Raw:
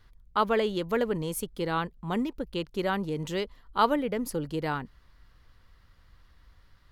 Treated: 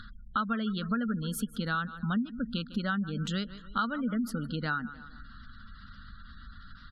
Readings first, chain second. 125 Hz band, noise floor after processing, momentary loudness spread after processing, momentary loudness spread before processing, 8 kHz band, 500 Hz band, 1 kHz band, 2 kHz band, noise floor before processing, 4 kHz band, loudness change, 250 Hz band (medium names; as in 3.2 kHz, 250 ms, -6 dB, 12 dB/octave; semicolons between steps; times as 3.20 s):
+1.5 dB, -49 dBFS, 19 LU, 8 LU, -3.5 dB, -13.5 dB, -5.0 dB, +1.0 dB, -59 dBFS, -1.5 dB, -3.0 dB, +0.5 dB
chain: in parallel at -2.5 dB: upward compressor, threshold -29 dBFS; on the sum: FFT filter 140 Hz 0 dB, 230 Hz +13 dB, 350 Hz -11 dB, 630 Hz -5 dB, 960 Hz -8 dB, 1.4 kHz +13 dB, 2.1 kHz -4 dB, 3.9 kHz +9 dB, 5.6 kHz +3 dB; on a send: feedback delay 152 ms, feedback 51%, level -19 dB; on the sum: compression 6:1, threshold -23 dBFS, peak gain reduction 13 dB; spectral gate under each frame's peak -30 dB strong; treble shelf 7.8 kHz -8 dB; trim -4.5 dB